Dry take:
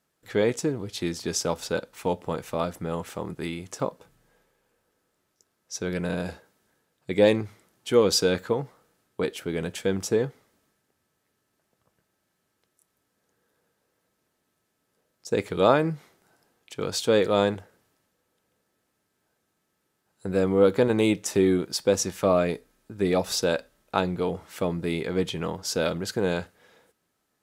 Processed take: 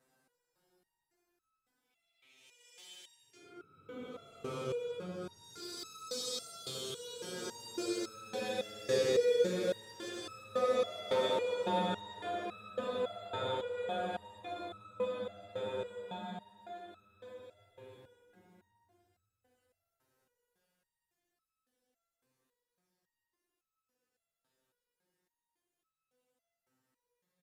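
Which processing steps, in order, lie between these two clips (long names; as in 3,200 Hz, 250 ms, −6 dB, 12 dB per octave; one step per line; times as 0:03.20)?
bouncing-ball delay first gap 130 ms, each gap 0.75×, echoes 5
extreme stretch with random phases 13×, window 0.10 s, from 0:16.50
step-sequenced resonator 3.6 Hz 130–1,300 Hz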